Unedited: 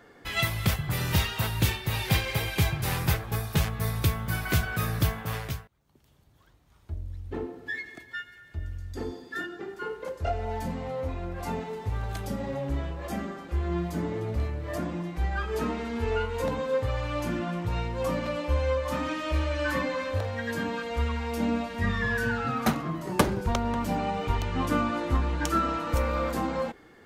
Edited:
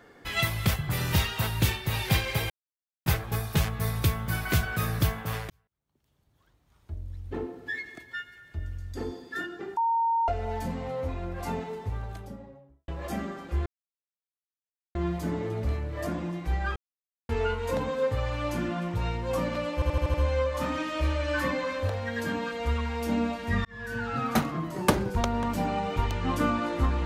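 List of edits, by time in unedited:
2.50–3.06 s: mute
5.50–7.33 s: fade in
9.77–10.28 s: bleep 919 Hz -22 dBFS
11.49–12.88 s: studio fade out
13.66 s: insert silence 1.29 s
15.47–16.00 s: mute
18.45 s: stutter 0.08 s, 6 plays
21.96–22.54 s: fade in

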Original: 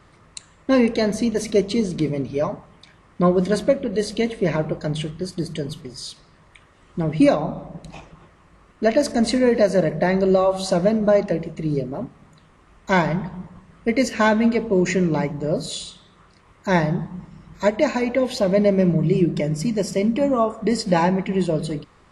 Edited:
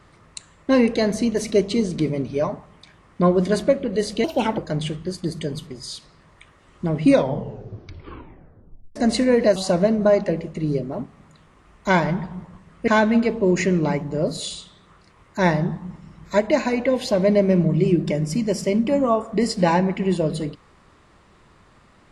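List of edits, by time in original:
4.24–4.72 s: speed 142%
7.19 s: tape stop 1.91 s
9.70–10.58 s: delete
13.90–14.17 s: delete

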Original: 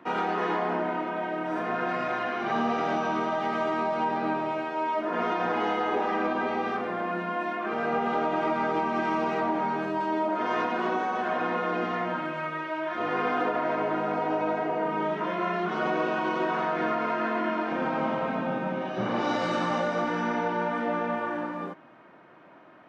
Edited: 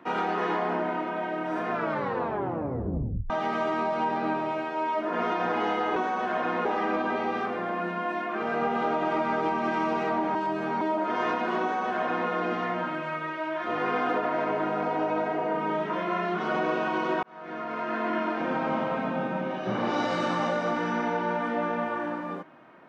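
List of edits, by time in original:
1.71 s: tape stop 1.59 s
9.66–10.12 s: reverse
10.92–11.61 s: copy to 5.96 s
16.54–17.43 s: fade in

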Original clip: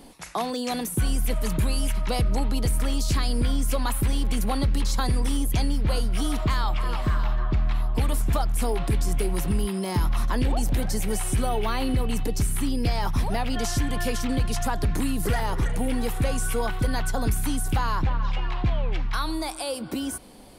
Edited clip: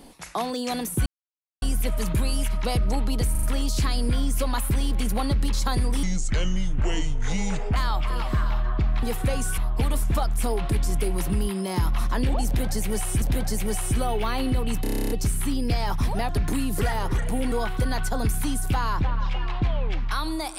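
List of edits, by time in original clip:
1.06 s: insert silence 0.56 s
2.75 s: stutter 0.04 s, 4 plays
5.35–6.49 s: speed 66%
10.64–11.40 s: loop, 2 plays
12.25 s: stutter 0.03 s, 10 plays
13.44–14.76 s: delete
15.99–16.54 s: move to 7.76 s

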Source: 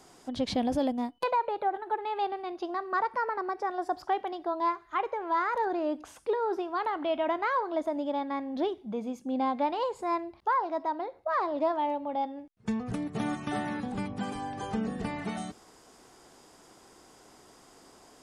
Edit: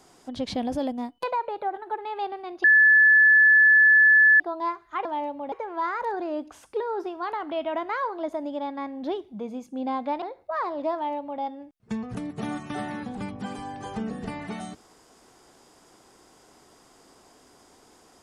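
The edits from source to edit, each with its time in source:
2.64–4.40 s: bleep 1.73 kHz -12.5 dBFS
9.75–10.99 s: delete
11.71–12.18 s: copy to 5.05 s

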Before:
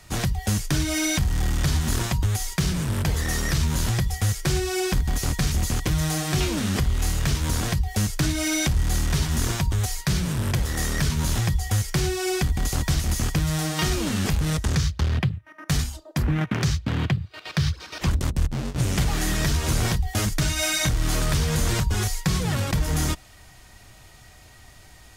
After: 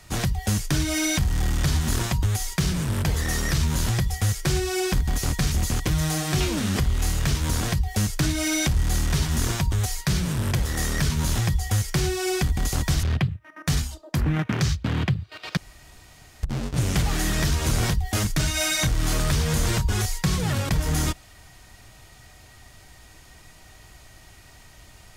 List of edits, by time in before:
13.03–15.05 s: delete
17.59–18.45 s: room tone

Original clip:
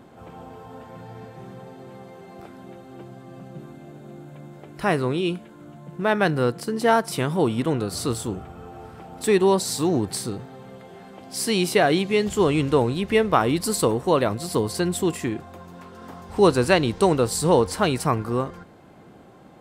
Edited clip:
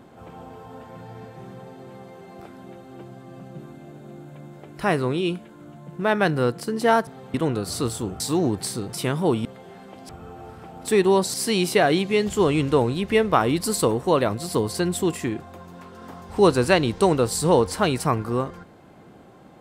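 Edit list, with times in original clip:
7.07–7.59 s: swap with 10.43–10.70 s
8.45–9.70 s: move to 11.34 s

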